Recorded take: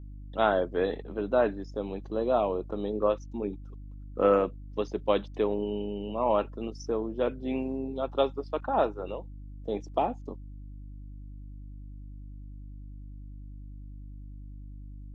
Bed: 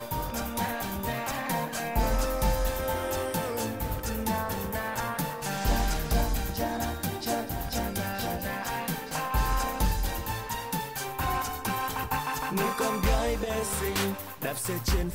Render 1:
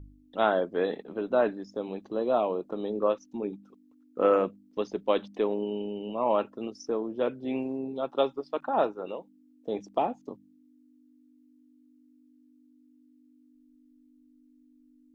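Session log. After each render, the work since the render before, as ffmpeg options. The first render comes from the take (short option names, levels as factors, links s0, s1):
-af "bandreject=f=50:t=h:w=4,bandreject=f=100:t=h:w=4,bandreject=f=150:t=h:w=4,bandreject=f=200:t=h:w=4"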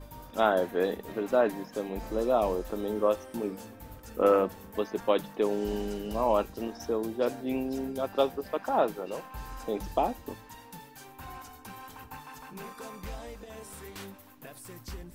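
-filter_complex "[1:a]volume=0.178[s0];[0:a][s0]amix=inputs=2:normalize=0"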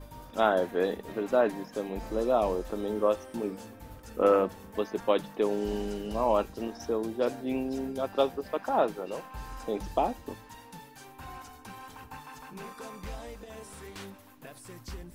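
-filter_complex "[0:a]acrossover=split=8900[s0][s1];[s1]acompressor=threshold=0.00112:ratio=4:attack=1:release=60[s2];[s0][s2]amix=inputs=2:normalize=0,equalizer=f=10000:w=6.7:g=3"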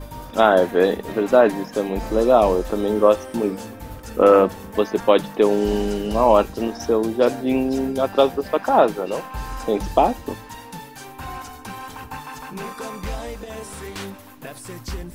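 -af "volume=3.55,alimiter=limit=0.794:level=0:latency=1"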